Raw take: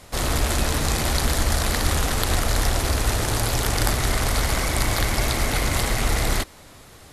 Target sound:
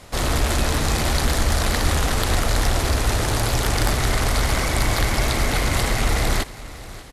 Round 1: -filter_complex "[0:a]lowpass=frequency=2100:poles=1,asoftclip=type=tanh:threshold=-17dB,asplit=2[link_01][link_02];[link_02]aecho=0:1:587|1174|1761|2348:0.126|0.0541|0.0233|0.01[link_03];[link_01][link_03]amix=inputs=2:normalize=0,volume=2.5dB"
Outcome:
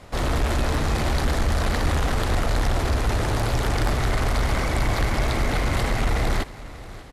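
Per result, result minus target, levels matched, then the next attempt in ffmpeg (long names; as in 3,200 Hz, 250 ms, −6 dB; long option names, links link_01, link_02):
8,000 Hz band −7.0 dB; soft clipping: distortion +9 dB
-filter_complex "[0:a]lowpass=frequency=8100:poles=1,asoftclip=type=tanh:threshold=-17dB,asplit=2[link_01][link_02];[link_02]aecho=0:1:587|1174|1761|2348:0.126|0.0541|0.0233|0.01[link_03];[link_01][link_03]amix=inputs=2:normalize=0,volume=2.5dB"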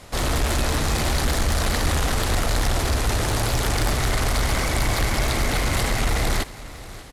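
soft clipping: distortion +10 dB
-filter_complex "[0:a]lowpass=frequency=8100:poles=1,asoftclip=type=tanh:threshold=-10dB,asplit=2[link_01][link_02];[link_02]aecho=0:1:587|1174|1761|2348:0.126|0.0541|0.0233|0.01[link_03];[link_01][link_03]amix=inputs=2:normalize=0,volume=2.5dB"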